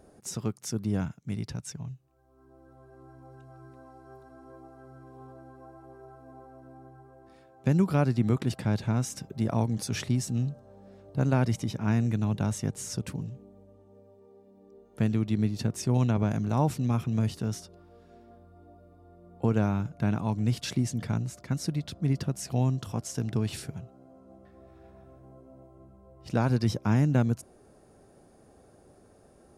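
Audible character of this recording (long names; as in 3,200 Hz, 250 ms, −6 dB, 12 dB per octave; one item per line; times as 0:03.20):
background noise floor −58 dBFS
spectral slope −8.0 dB per octave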